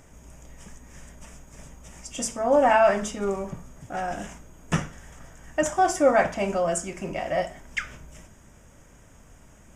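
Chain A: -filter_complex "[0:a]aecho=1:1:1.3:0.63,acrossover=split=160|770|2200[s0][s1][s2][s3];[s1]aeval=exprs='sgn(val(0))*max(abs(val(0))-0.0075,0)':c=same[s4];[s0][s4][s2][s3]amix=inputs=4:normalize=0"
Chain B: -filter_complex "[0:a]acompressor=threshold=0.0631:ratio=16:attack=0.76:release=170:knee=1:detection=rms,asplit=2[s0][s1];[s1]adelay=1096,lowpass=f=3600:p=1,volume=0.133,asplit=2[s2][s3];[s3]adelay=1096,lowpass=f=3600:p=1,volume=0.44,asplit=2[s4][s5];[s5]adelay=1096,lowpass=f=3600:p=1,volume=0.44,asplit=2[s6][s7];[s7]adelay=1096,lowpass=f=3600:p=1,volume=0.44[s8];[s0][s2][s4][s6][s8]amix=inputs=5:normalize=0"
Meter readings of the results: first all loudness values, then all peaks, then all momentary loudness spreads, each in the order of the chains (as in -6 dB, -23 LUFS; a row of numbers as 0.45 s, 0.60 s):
-23.0 LUFS, -33.0 LUFS; -6.0 dBFS, -20.0 dBFS; 21 LU, 19 LU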